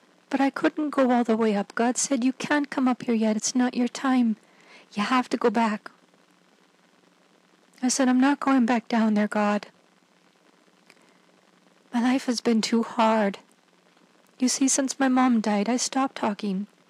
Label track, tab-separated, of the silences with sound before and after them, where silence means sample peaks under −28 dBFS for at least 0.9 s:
5.870000	7.830000	silence
9.630000	11.940000	silence
13.350000	14.420000	silence